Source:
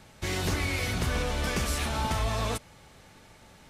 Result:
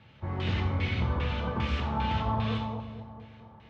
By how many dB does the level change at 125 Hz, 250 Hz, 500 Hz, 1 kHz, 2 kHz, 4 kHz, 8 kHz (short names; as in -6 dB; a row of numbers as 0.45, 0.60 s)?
+2.5 dB, +1.5 dB, -3.5 dB, +1.0 dB, -4.5 dB, -4.5 dB, under -25 dB